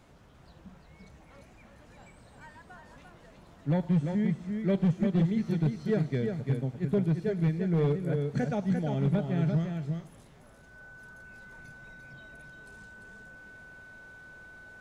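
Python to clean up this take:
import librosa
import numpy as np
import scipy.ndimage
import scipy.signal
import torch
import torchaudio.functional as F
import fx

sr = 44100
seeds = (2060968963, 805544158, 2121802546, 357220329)

y = fx.fix_declip(x, sr, threshold_db=-20.0)
y = fx.notch(y, sr, hz=1500.0, q=30.0)
y = fx.fix_echo_inverse(y, sr, delay_ms=346, level_db=-5.5)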